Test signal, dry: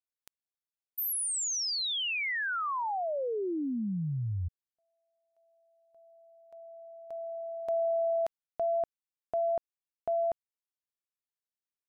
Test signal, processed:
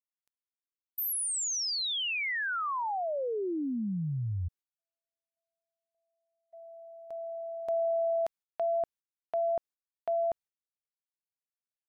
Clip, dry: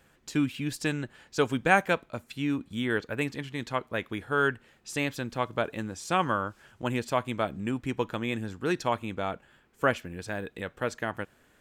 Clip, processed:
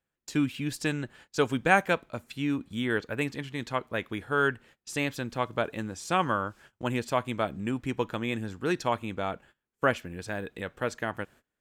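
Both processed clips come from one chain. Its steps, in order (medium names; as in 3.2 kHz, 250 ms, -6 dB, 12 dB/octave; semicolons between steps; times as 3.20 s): gate -52 dBFS, range -24 dB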